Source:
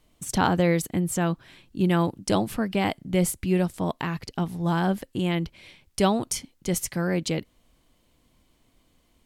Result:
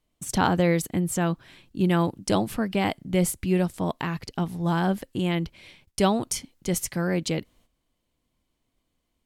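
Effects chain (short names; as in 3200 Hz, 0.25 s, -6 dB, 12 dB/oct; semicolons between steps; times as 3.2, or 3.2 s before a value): gate -57 dBFS, range -12 dB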